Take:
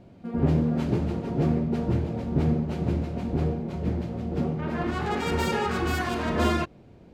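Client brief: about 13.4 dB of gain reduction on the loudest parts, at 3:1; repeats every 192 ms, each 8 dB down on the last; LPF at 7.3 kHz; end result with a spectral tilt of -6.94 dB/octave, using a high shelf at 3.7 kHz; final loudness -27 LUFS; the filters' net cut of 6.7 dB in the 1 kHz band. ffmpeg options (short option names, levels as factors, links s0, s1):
-af "lowpass=7300,equalizer=f=1000:t=o:g=-9,highshelf=f=3700:g=-4.5,acompressor=threshold=0.0126:ratio=3,aecho=1:1:192|384|576|768|960:0.398|0.159|0.0637|0.0255|0.0102,volume=3.55"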